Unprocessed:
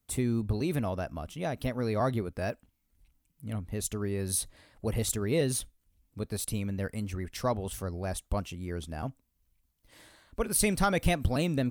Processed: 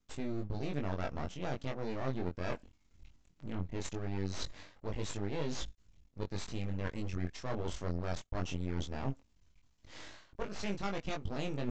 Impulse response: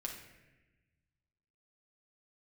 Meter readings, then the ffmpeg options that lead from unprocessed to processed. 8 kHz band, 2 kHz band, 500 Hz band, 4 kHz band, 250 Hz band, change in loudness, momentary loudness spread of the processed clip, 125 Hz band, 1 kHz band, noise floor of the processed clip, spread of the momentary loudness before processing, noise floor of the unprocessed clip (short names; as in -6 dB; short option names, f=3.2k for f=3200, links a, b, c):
-16.0 dB, -7.0 dB, -8.0 dB, -6.0 dB, -7.5 dB, -8.0 dB, 8 LU, -6.5 dB, -7.5 dB, -70 dBFS, 12 LU, -76 dBFS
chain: -af "areverse,acompressor=threshold=-41dB:ratio=10,areverse,aeval=exprs='max(val(0),0)':c=same,flanger=delay=20:depth=2.9:speed=0.19,aresample=16000,aresample=44100,volume=13dB"